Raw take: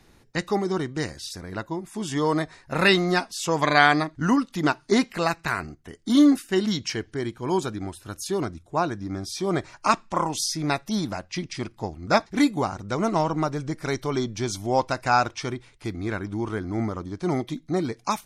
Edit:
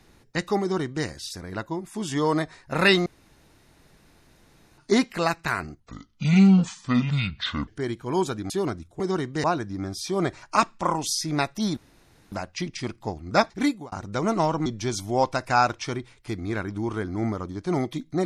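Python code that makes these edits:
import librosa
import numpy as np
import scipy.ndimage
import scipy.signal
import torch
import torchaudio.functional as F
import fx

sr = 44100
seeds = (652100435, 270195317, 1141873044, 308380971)

y = fx.edit(x, sr, fx.duplicate(start_s=0.61, length_s=0.44, to_s=8.75),
    fx.room_tone_fill(start_s=3.06, length_s=1.72),
    fx.speed_span(start_s=5.8, length_s=1.24, speed=0.66),
    fx.cut(start_s=7.86, length_s=0.39),
    fx.insert_room_tone(at_s=11.08, length_s=0.55),
    fx.fade_out_span(start_s=12.31, length_s=0.37),
    fx.cut(start_s=13.42, length_s=0.8), tone=tone)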